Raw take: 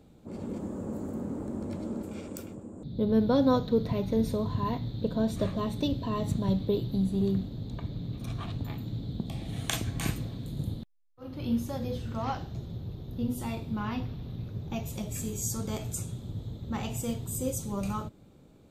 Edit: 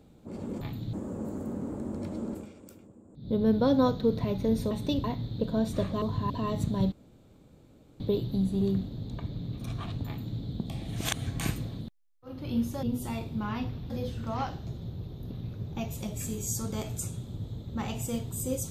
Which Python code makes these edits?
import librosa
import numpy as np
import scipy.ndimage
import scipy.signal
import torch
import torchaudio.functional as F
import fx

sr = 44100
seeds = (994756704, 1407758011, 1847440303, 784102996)

y = fx.edit(x, sr, fx.fade_down_up(start_s=2.05, length_s=0.93, db=-10.5, fade_s=0.13),
    fx.swap(start_s=4.39, length_s=0.28, other_s=5.65, other_length_s=0.33),
    fx.insert_room_tone(at_s=6.6, length_s=1.08),
    fx.duplicate(start_s=8.66, length_s=0.32, to_s=0.61),
    fx.reverse_span(start_s=9.56, length_s=0.3),
    fx.cut(start_s=10.41, length_s=0.35),
    fx.move(start_s=13.19, length_s=1.07, to_s=11.78), tone=tone)